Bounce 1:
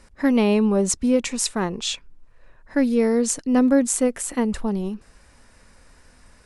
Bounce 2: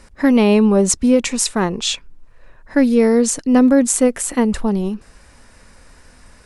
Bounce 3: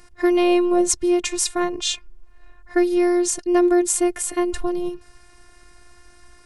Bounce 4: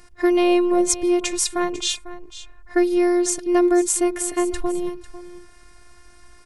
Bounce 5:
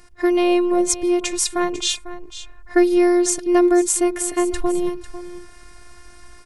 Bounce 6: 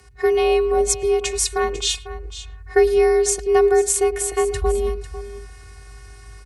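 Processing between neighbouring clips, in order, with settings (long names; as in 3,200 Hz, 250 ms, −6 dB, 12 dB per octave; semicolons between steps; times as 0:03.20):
boost into a limiter +8.5 dB; level −2.5 dB
phases set to zero 354 Hz; level −1 dB
single-tap delay 498 ms −15.5 dB
automatic gain control gain up to 5 dB
far-end echo of a speakerphone 110 ms, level −20 dB; frequency shifter +50 Hz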